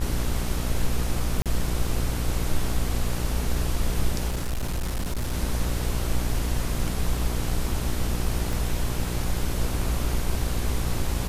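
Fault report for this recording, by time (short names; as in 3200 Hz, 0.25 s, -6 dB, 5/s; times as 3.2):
buzz 60 Hz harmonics 26 -29 dBFS
1.42–1.46 gap 37 ms
4.28–5.34 clipped -23.5 dBFS
8.53 pop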